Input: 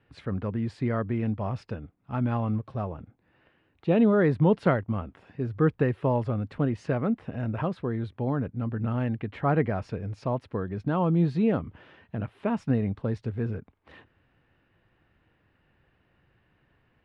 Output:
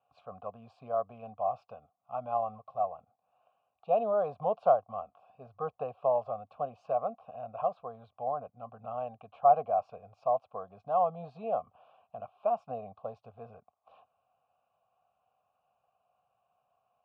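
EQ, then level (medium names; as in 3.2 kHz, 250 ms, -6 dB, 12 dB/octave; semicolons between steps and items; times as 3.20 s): dynamic bell 580 Hz, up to +5 dB, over -36 dBFS, Q 1.3; vowel filter a; static phaser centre 810 Hz, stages 4; +7.0 dB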